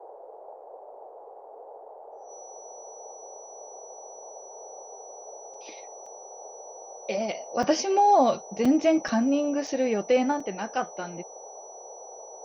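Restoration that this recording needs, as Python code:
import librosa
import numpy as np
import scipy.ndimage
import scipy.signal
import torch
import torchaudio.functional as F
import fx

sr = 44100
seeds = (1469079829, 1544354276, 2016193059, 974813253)

y = fx.notch(x, sr, hz=5900.0, q=30.0)
y = fx.fix_interpolate(y, sr, at_s=(5.54, 6.06, 7.63, 8.65, 9.08, 9.67, 10.4), length_ms=4.0)
y = fx.noise_reduce(y, sr, print_start_s=1.07, print_end_s=1.57, reduce_db=26.0)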